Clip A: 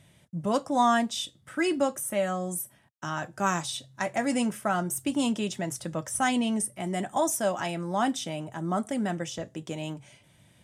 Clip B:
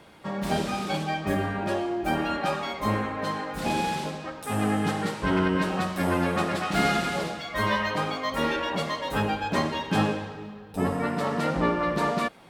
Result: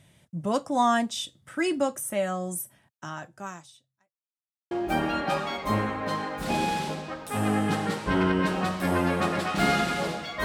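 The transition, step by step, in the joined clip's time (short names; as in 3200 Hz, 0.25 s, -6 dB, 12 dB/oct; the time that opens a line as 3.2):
clip A
2.83–4.15 fade out quadratic
4.15–4.71 mute
4.71 switch to clip B from 1.87 s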